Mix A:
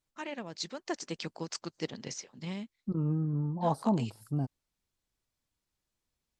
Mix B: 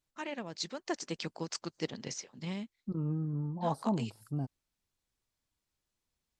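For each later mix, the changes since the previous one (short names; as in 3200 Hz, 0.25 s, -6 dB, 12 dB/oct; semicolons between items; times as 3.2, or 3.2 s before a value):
second voice -3.5 dB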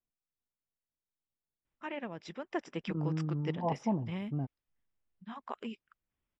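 first voice: entry +1.65 s; master: add polynomial smoothing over 25 samples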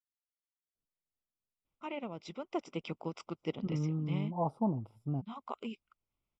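second voice: entry +0.75 s; master: add Butterworth band-stop 1700 Hz, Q 2.6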